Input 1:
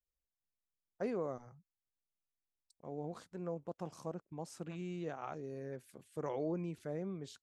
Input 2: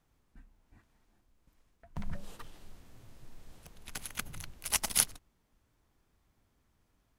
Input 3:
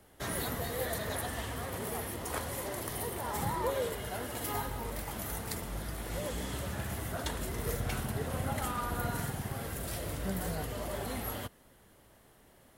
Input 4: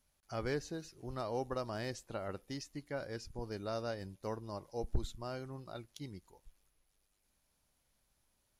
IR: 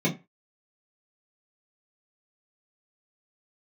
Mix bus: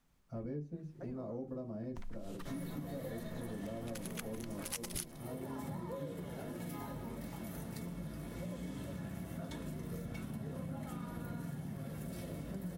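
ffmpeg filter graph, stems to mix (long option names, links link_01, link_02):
-filter_complex "[0:a]volume=-10.5dB,asplit=2[link_01][link_02];[link_02]volume=-21dB[link_03];[1:a]equalizer=frequency=200:width=0.35:gain=-8,volume=0.5dB[link_04];[2:a]adelay=2250,volume=-10dB,asplit=2[link_05][link_06];[link_06]volume=-11dB[link_07];[3:a]tiltshelf=frequency=1100:gain=5.5,equalizer=frequency=3600:width=0.61:gain=-8.5,volume=-11dB,asplit=2[link_08][link_09];[link_09]volume=-8dB[link_10];[4:a]atrim=start_sample=2205[link_11];[link_03][link_07][link_10]amix=inputs=3:normalize=0[link_12];[link_12][link_11]afir=irnorm=-1:irlink=0[link_13];[link_01][link_04][link_05][link_08][link_13]amix=inputs=5:normalize=0,acompressor=threshold=-40dB:ratio=4"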